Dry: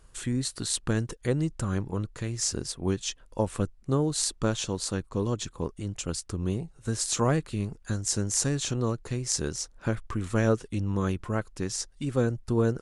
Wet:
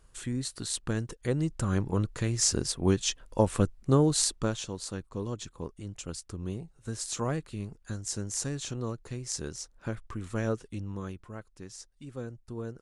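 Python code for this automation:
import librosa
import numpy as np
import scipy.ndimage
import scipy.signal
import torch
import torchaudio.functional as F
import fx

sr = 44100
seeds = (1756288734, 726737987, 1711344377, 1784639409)

y = fx.gain(x, sr, db=fx.line((1.1, -4.0), (1.99, 3.0), (4.13, 3.0), (4.67, -6.5), (10.72, -6.5), (11.29, -13.5)))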